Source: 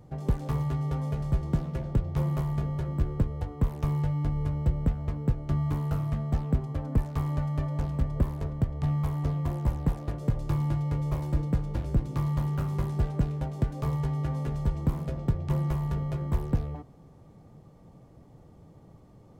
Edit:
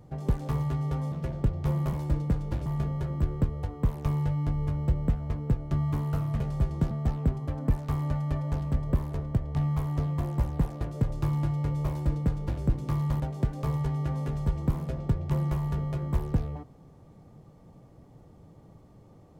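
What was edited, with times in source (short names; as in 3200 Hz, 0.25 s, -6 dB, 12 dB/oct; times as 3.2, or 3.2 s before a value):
1.12–1.63 move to 6.18
11.16–11.89 copy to 2.44
12.47–13.39 cut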